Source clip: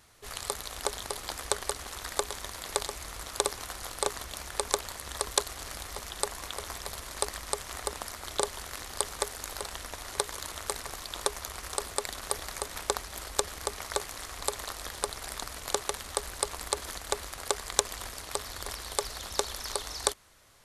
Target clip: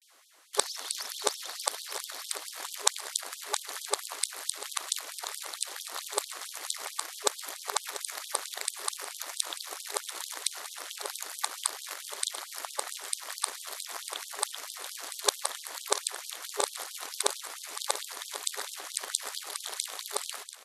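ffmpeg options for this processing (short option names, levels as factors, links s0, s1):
-filter_complex "[0:a]areverse,asubboost=boost=9:cutoff=56,asplit=2[s0][s1];[s1]aecho=0:1:690|1380|2070|2760|3450:0.224|0.103|0.0474|0.0218|0.01[s2];[s0][s2]amix=inputs=2:normalize=0,afftfilt=real='re*gte(b*sr/1024,240*pow(3100/240,0.5+0.5*sin(2*PI*4.5*pts/sr)))':imag='im*gte(b*sr/1024,240*pow(3100/240,0.5+0.5*sin(2*PI*4.5*pts/sr)))':win_size=1024:overlap=0.75,volume=1.12"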